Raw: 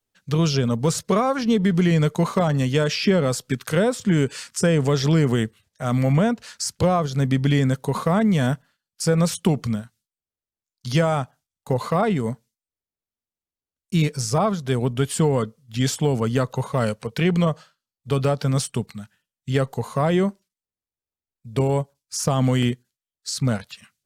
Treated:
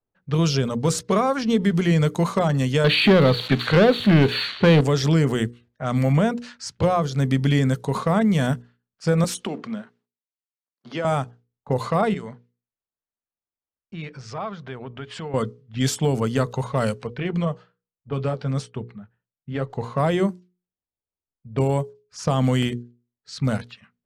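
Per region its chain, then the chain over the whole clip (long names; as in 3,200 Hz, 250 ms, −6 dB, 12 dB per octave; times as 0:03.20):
0:02.84–0:04.81: spike at every zero crossing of −19 dBFS + linear-phase brick-wall low-pass 4,600 Hz + leveller curve on the samples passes 2
0:09.24–0:11.05: mu-law and A-law mismatch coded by mu + high-pass filter 220 Hz 24 dB per octave + downward compressor 2.5 to 1, threshold −25 dBFS
0:12.14–0:15.34: Bessel low-pass filter 5,300 Hz + downward compressor 2.5 to 1, threshold −29 dBFS + tilt shelving filter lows −6 dB, about 770 Hz
0:17.16–0:19.70: high-shelf EQ 4,100 Hz −8 dB + flanger 1.2 Hz, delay 1.6 ms, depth 8.1 ms, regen −59%
whole clip: mains-hum notches 60/120/180/240/300/360/420/480 Hz; low-pass that shuts in the quiet parts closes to 1,100 Hz, open at −18 dBFS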